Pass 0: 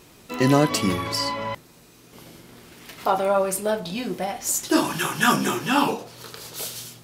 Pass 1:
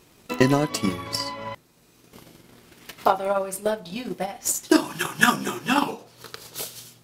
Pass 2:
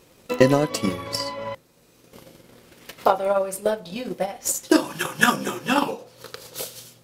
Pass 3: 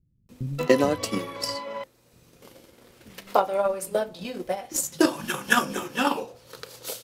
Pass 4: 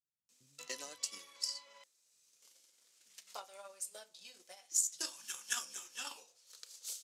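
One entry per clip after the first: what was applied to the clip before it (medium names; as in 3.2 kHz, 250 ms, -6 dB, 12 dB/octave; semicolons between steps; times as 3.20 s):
transient shaper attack +11 dB, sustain -3 dB; trim -5.5 dB
peaking EQ 520 Hz +11 dB 0.23 oct
bands offset in time lows, highs 290 ms, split 170 Hz; trim -2.5 dB
band-pass filter 6.9 kHz, Q 1.9; trim -2.5 dB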